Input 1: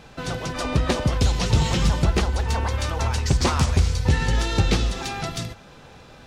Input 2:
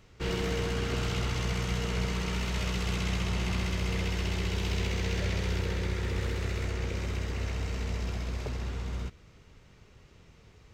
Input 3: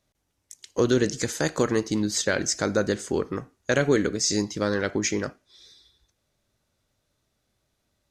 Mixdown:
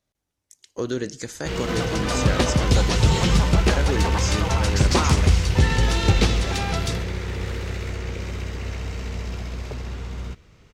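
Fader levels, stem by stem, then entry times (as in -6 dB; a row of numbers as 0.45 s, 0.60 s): +1.5 dB, +3.0 dB, -5.5 dB; 1.50 s, 1.25 s, 0.00 s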